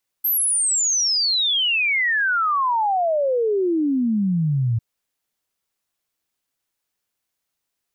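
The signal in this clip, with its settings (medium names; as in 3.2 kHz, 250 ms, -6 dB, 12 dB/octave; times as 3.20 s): log sweep 13 kHz -> 110 Hz 4.55 s -17 dBFS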